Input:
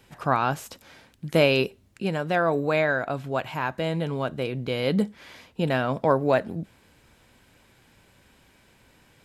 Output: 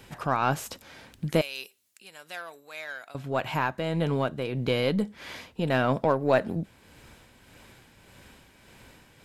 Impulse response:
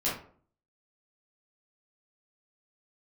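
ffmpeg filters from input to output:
-filter_complex "[0:a]aeval=exprs='0.447*(cos(1*acos(clip(val(0)/0.447,-1,1)))-cos(1*PI/2))+0.00891*(cos(8*acos(clip(val(0)/0.447,-1,1)))-cos(8*PI/2))':c=same,asplit=2[a][b];[b]acompressor=threshold=-36dB:ratio=6,volume=1dB[c];[a][c]amix=inputs=2:normalize=0,tremolo=f=1.7:d=0.47,asettb=1/sr,asplit=3[d][e][f];[d]atrim=end=1.414[g];[e]atrim=start=1.41:end=3.15,asetpts=PTS-STARTPTS,afade=t=in:d=0.004:c=qsin,afade=t=out:st=1.736:d=0.004:c=qsin,aderivative[h];[f]atrim=start=3.146[i];[g][h]acrossfade=d=0.004:c1=hsin:c2=qsin[j];[j][i]acrossfade=d=0.004:c1=qsin:c2=hsin"

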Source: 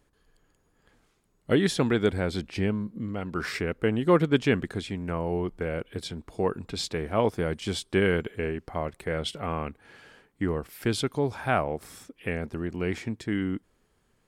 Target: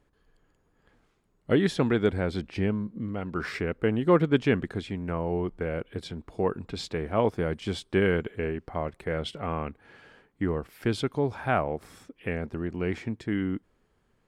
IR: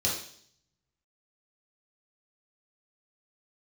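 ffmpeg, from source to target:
-af "highshelf=f=4.7k:g=-11"

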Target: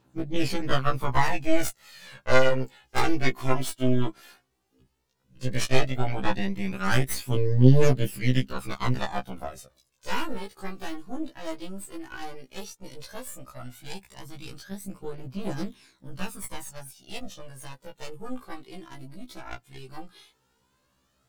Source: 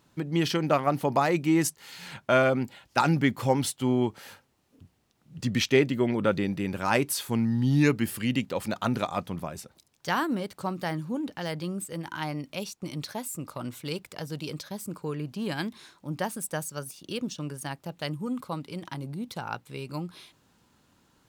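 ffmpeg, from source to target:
-af "aeval=exprs='0.422*(cos(1*acos(clip(val(0)/0.422,-1,1)))-cos(1*PI/2))+0.133*(cos(6*acos(clip(val(0)/0.422,-1,1)))-cos(6*PI/2))':c=same,aphaser=in_gain=1:out_gain=1:delay=3.2:decay=0.57:speed=0.13:type=triangular,afftfilt=real='re*1.73*eq(mod(b,3),0)':imag='im*1.73*eq(mod(b,3),0)':win_size=2048:overlap=0.75,volume=-3.5dB"

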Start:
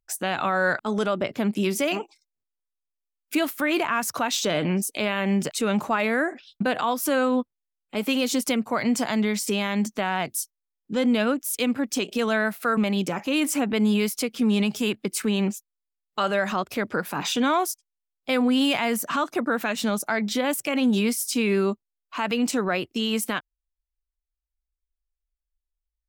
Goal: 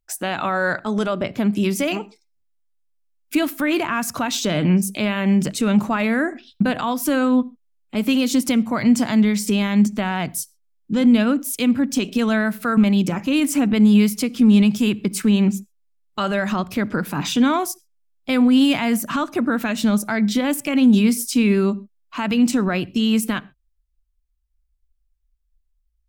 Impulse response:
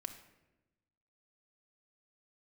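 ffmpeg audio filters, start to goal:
-filter_complex "[0:a]asubboost=boost=3:cutoff=240,asplit=2[a][b];[1:a]atrim=start_sample=2205,atrim=end_sample=6174,lowshelf=f=490:g=8.5[c];[b][c]afir=irnorm=-1:irlink=0,volume=-9.5dB[d];[a][d]amix=inputs=2:normalize=0"

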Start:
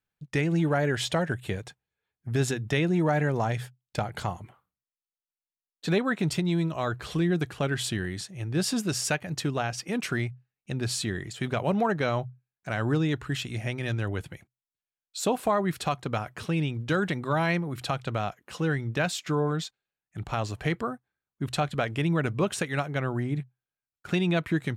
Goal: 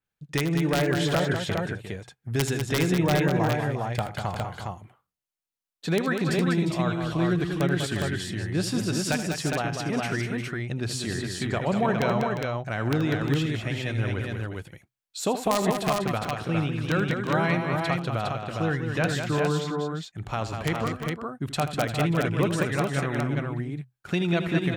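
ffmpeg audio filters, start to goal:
-af "aeval=exprs='(mod(5.62*val(0)+1,2)-1)/5.62':c=same,aecho=1:1:79|196|353|410:0.251|0.473|0.282|0.668,adynamicequalizer=threshold=0.00501:dfrequency=4300:dqfactor=0.7:tfrequency=4300:tqfactor=0.7:attack=5:release=100:ratio=0.375:range=2.5:mode=cutabove:tftype=highshelf"

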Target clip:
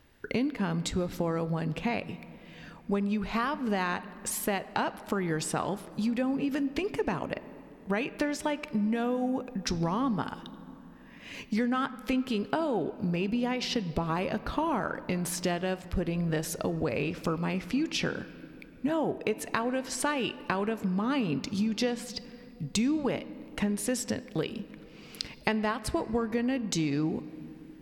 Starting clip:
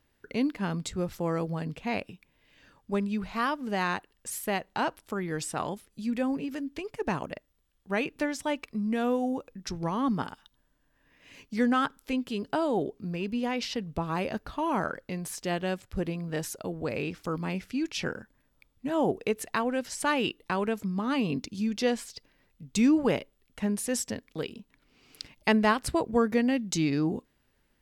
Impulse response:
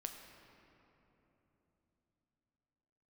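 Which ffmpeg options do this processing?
-filter_complex "[0:a]acompressor=threshold=-36dB:ratio=6,asplit=2[a][b];[1:a]atrim=start_sample=2205,asetrate=41895,aresample=44100,lowpass=6k[c];[b][c]afir=irnorm=-1:irlink=0,volume=-4dB[d];[a][d]amix=inputs=2:normalize=0,volume=6.5dB"

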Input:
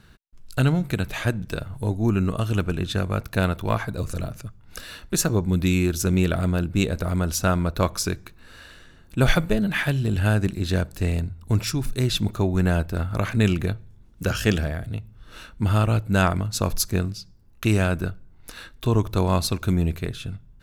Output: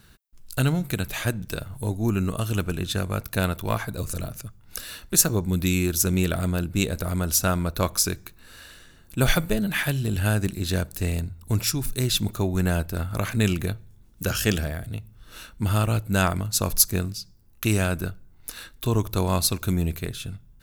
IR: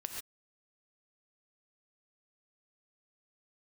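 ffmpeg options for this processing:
-af "aemphasis=mode=production:type=50kf,volume=-2.5dB"

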